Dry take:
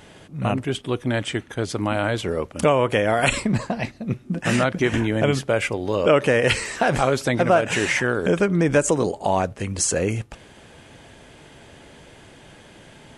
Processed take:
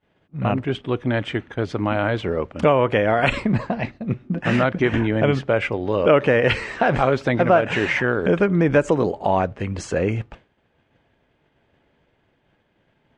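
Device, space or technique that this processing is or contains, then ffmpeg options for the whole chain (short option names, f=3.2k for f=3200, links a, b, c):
hearing-loss simulation: -af "lowpass=2.8k,agate=range=-33dB:threshold=-34dB:ratio=3:detection=peak,volume=1.5dB"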